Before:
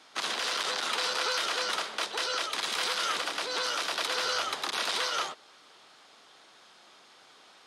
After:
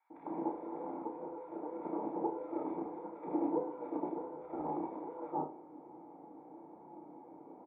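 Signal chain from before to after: HPF 83 Hz; bell 230 Hz -14 dB 0.26 oct; notch 3100 Hz, Q 5.2; negative-ratio compressor -36 dBFS, ratio -0.5; vocal tract filter u; air absorption 490 m; doubler 33 ms -5 dB; bands offset in time highs, lows 0.1 s, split 1600 Hz; on a send at -5.5 dB: reverb RT60 0.55 s, pre-delay 3 ms; on the sum: gain +17 dB

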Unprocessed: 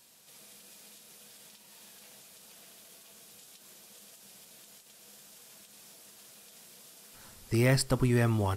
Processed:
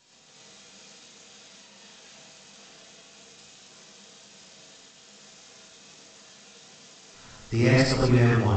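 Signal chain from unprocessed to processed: reverse delay 0.127 s, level -8 dB; non-linear reverb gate 0.13 s rising, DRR -5 dB; G.722 64 kbps 16000 Hz

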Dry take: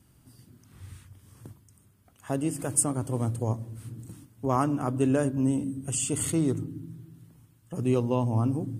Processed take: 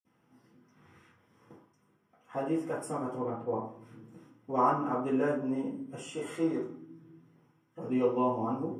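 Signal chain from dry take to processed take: 3.12–3.59 LPF 2400 Hz 12 dB/oct; 6.03–6.97 low shelf 230 Hz -8.5 dB; reverb RT60 0.45 s, pre-delay 46 ms, DRR -60 dB; gain -4.5 dB

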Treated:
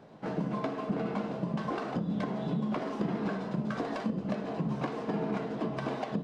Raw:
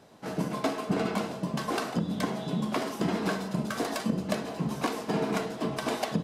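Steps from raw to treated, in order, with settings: CVSD 64 kbps; bell 74 Hz -3.5 dB; compressor, threshold -32 dBFS, peak gain reduction 10 dB; tape spacing loss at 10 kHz 26 dB; on a send: reverb RT60 0.45 s, pre-delay 3 ms, DRR 12 dB; on the sum: gain +3.5 dB

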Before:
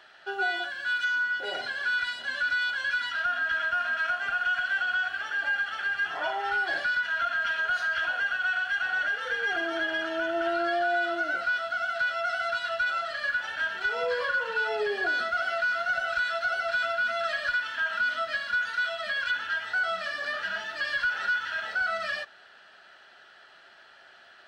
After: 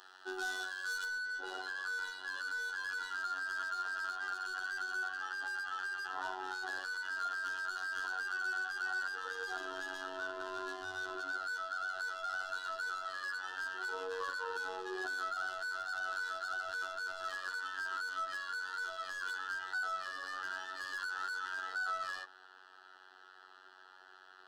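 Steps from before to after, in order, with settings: soft clip -31.5 dBFS, distortion -10 dB; high shelf 4900 Hz +7.5 dB, from 1.04 s -4.5 dB; robotiser 93.4 Hz; tone controls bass -10 dB, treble -3 dB; fixed phaser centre 600 Hz, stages 6; gain +2.5 dB

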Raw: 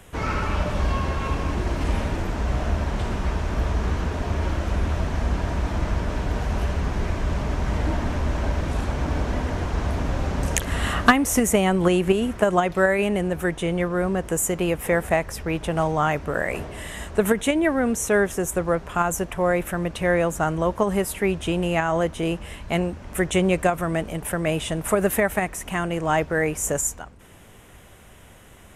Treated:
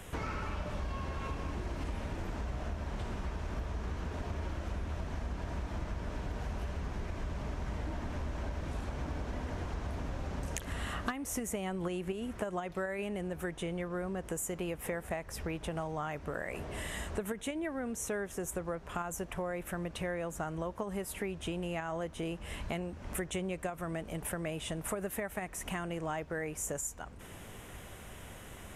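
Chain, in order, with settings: compressor 5:1, threshold -36 dBFS, peak gain reduction 23 dB

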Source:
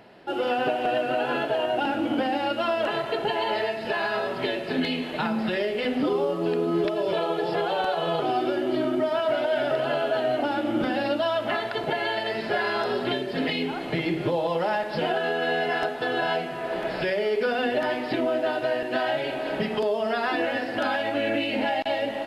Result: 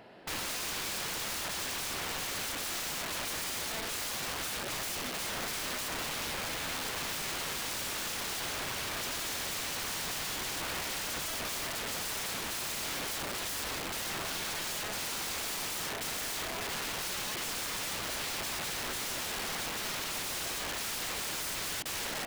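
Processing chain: notches 50/100/150/200/250/300/350/400 Hz; wrapped overs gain 29 dB; gain -2.5 dB

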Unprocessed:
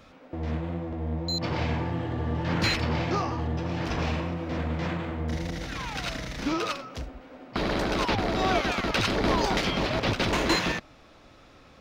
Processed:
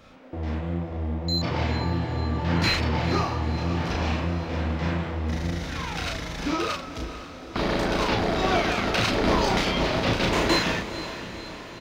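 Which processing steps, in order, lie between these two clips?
doubler 35 ms -2.5 dB; diffused feedback echo 0.483 s, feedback 59%, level -12 dB

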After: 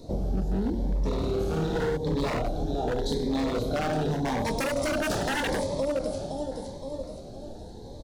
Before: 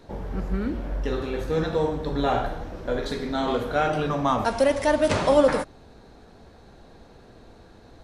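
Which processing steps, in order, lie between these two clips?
band shelf 1800 Hz -14.5 dB; doubler 26 ms -8 dB; feedback echo 0.516 s, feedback 43%, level -9.5 dB; wavefolder -20.5 dBFS; 1.13–1.97 flutter echo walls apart 9.6 m, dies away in 1.2 s; compressor, threshold -30 dBFS, peak gain reduction 11 dB; cascading phaser rising 0.85 Hz; gain +6.5 dB

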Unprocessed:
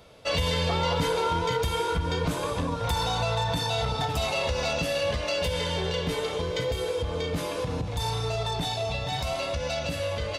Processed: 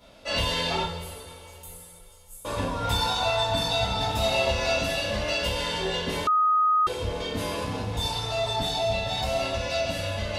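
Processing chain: 0.82–2.45 inverse Chebyshev band-stop 130–1800 Hz, stop band 80 dB; reverb, pre-delay 3 ms, DRR -8 dB; 6.27–6.87 bleep 1250 Hz -11 dBFS; gain -7 dB

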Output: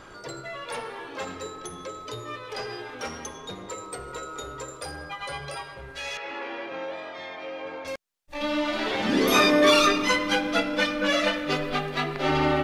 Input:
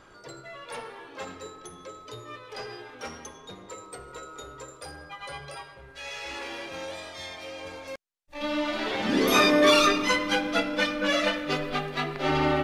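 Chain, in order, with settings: in parallel at +2 dB: compressor, threshold -41 dBFS, peak gain reduction 23.5 dB; 6.17–7.85 on the sum: BPF 220–2200 Hz

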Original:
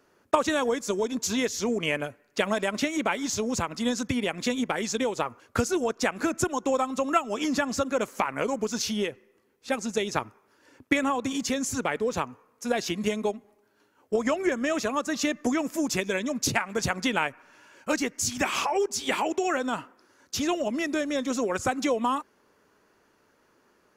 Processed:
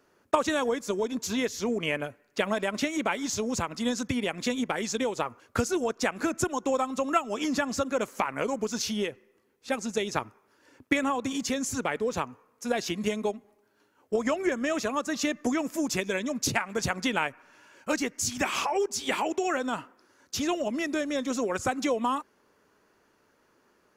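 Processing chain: 0.64–2.74 dynamic EQ 7000 Hz, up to -4 dB, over -47 dBFS, Q 0.94; gain -1.5 dB

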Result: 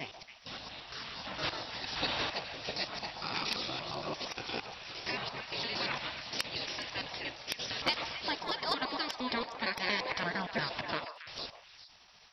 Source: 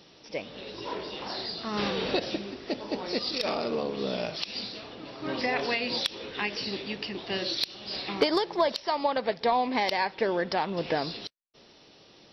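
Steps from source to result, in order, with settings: slices in reverse order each 0.115 s, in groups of 4; spectral gate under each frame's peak -10 dB weak; delay with a stepping band-pass 0.138 s, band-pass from 810 Hz, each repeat 1.4 oct, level -5.5 dB

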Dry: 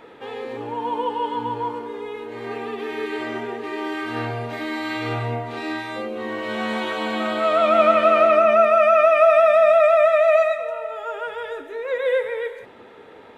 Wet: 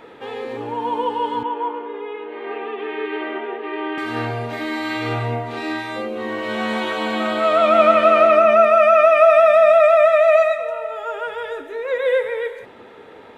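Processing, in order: 1.43–3.98 elliptic band-pass 310–3100 Hz, stop band 50 dB; gain +2.5 dB

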